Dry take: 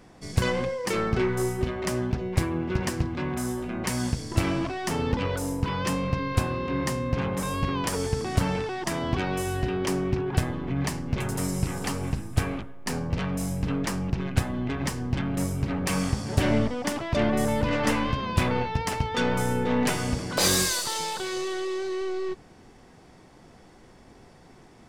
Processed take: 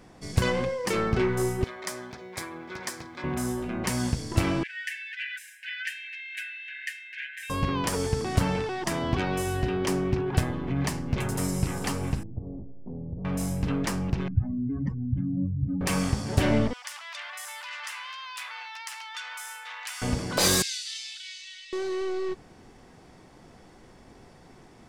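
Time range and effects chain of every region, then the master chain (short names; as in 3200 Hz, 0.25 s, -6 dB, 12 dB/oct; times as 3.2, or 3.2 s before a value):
1.64–3.24 HPF 1300 Hz 6 dB/oct + notch 2800 Hz, Q 5
4.63–7.5 brick-wall FIR high-pass 1500 Hz + resonant high shelf 3400 Hz -11.5 dB, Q 1.5 + comb 6 ms, depth 86%
12.23–13.25 Gaussian blur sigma 16 samples + compressor 2:1, threshold -36 dBFS
14.28–15.81 spectral contrast raised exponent 2.7 + air absorption 140 m
16.73–20.02 Bessel high-pass 1600 Hz, order 6 + compressor 2.5:1, threshold -35 dBFS
20.62–21.73 inverse Chebyshev high-pass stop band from 1100 Hz + air absorption 97 m + doubler 17 ms -12.5 dB
whole clip: dry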